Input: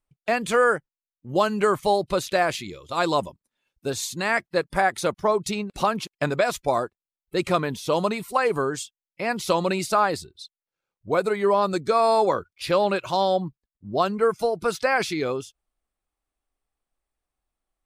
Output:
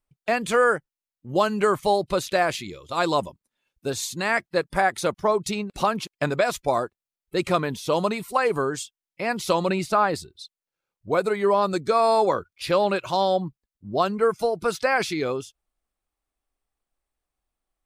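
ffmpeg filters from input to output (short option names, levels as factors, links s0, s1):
-filter_complex "[0:a]asettb=1/sr,asplit=3[s0][s1][s2];[s0]atrim=end=9.694[s3];[s1]atrim=start=9.69:end=10.15,asetpts=PTS-STARTPTS,afade=t=in:d=0.004:c=qsin,afade=t=out:st=0.456:d=0.004:c=qsin,bass=f=250:g=3,treble=f=4000:g=-7[s4];[s2]atrim=start=10.146[s5];[s3][s4]acrossfade=d=0.004:c1=hsin:c2=qsin[s6];[s6][s5]acrossfade=d=0.004:c1=qsin:c2=hsin"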